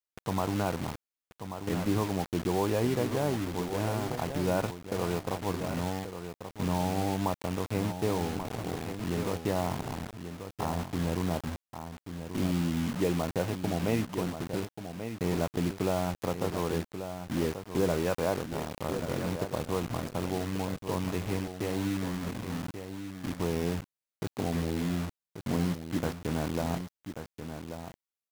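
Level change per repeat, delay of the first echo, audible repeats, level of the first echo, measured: no regular repeats, 1135 ms, 1, -9.0 dB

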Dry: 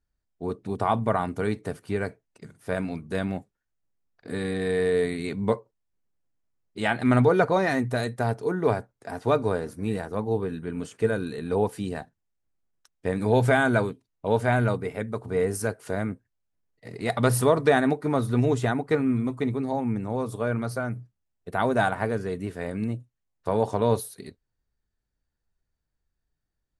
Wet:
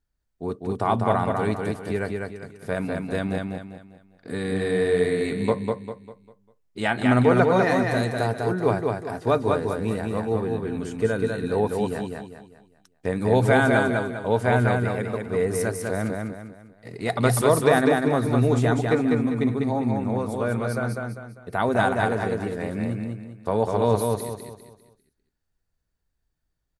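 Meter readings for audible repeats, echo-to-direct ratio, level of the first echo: 4, -3.0 dB, -3.5 dB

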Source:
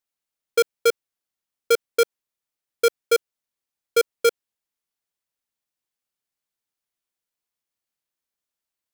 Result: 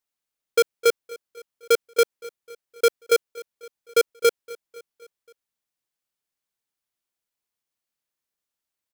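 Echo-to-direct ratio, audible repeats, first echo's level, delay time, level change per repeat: -19.0 dB, 3, -20.5 dB, 258 ms, -5.0 dB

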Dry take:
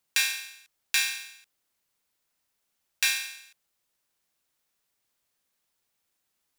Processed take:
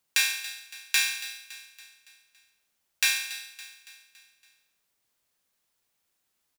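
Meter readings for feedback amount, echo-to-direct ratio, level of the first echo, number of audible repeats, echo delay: 51%, -13.5 dB, -15.0 dB, 4, 281 ms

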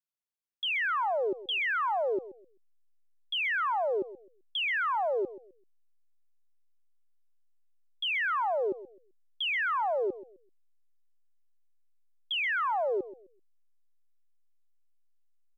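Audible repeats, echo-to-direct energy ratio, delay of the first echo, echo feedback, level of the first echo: 2, -15.0 dB, 129 ms, 25%, -15.5 dB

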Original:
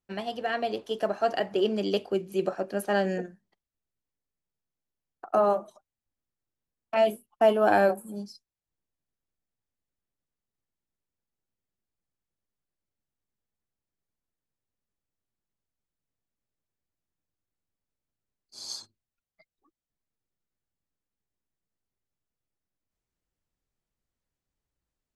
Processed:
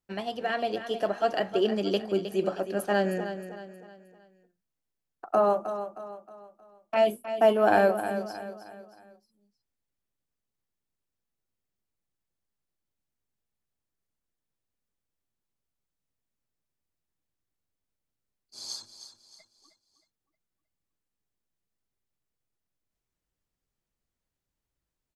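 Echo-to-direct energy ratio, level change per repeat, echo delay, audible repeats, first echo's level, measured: -9.5 dB, -7.5 dB, 313 ms, 4, -10.5 dB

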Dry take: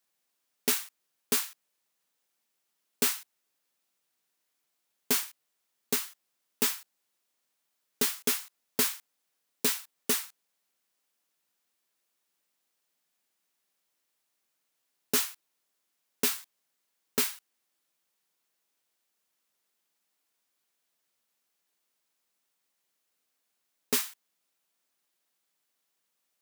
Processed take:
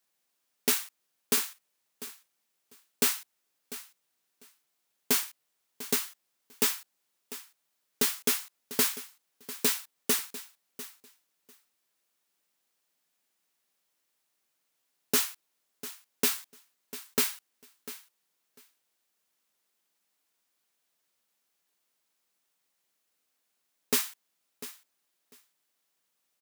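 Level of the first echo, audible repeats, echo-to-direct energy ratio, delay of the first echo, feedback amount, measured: -15.5 dB, 2, -15.5 dB, 697 ms, 16%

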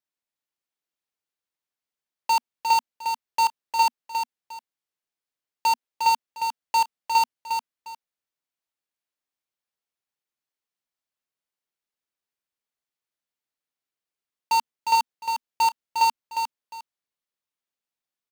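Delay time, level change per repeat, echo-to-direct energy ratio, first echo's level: 355 ms, -12.0 dB, -5.5 dB, -6.0 dB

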